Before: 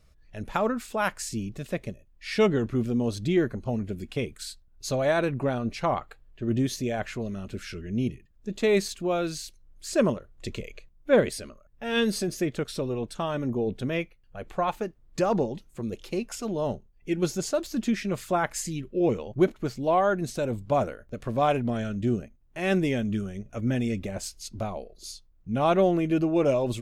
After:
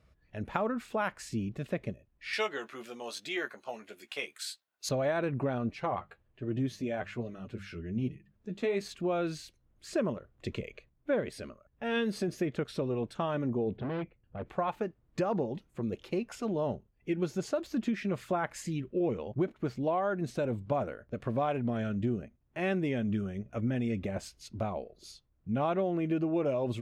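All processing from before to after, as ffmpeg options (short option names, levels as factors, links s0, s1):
-filter_complex "[0:a]asettb=1/sr,asplit=3[s0][s1][s2];[s0]atrim=end=2.334[s3];[s1]atrim=start=2.33:end=4.89,asetpts=PTS-STARTPTS,afade=t=in:d=0.004:c=qsin,afade=t=out:st=2.556:d=0.004:c=qsin,highpass=820,highshelf=f=3400:g=11,asplit=2[s4][s5];[s5]adelay=14,volume=0.422[s6];[s4][s6]amix=inputs=2:normalize=0,atrim=end_sample=112896[s7];[s2]atrim=start=4.886[s8];[s3][s7]acrossfade=d=0.004:c1=hsin:c2=qsin[s9];[s9][s8]acrossfade=d=0.004:c1=qsin:c2=hsin,asettb=1/sr,asplit=3[s10][s11][s12];[s10]atrim=end=5.704[s13];[s11]atrim=start=5.7:end=8.81,asetpts=PTS-STARTPTS,afade=t=in:d=0.004:c=qsin,afade=t=out:st=3.106:d=0.004:c=qsin,bandreject=f=50:t=h:w=6,bandreject=f=100:t=h:w=6,bandreject=f=150:t=h:w=6,bandreject=f=200:t=h:w=6,acompressor=mode=upward:threshold=0.00562:ratio=2.5:attack=3.2:release=140:knee=2.83:detection=peak,flanger=delay=6.2:depth=6:regen=27:speed=1.2:shape=sinusoidal[s14];[s12]atrim=start=8.806[s15];[s13][s14]acrossfade=d=0.004:c1=hsin:c2=qsin[s16];[s16][s15]acrossfade=d=0.004:c1=qsin:c2=hsin,asettb=1/sr,asplit=3[s17][s18][s19];[s17]atrim=end=13.764[s20];[s18]atrim=start=13.76:end=14.46,asetpts=PTS-STARTPTS,afade=t=in:d=0.004:c=qsin,afade=t=out:st=0.696:d=0.004:c=qsin,tiltshelf=f=810:g=5.5,volume=37.6,asoftclip=hard,volume=0.0266,lowpass=f=3900:w=0.5412,lowpass=f=3900:w=1.3066[s21];[s19]atrim=start=14.456[s22];[s20][s21]acrossfade=d=0.004:c1=hsin:c2=qsin[s23];[s23][s22]acrossfade=d=0.004:c1=qsin:c2=hsin,highpass=61,bass=f=250:g=0,treble=f=4000:g=-12,acompressor=threshold=0.0501:ratio=5,volume=0.891"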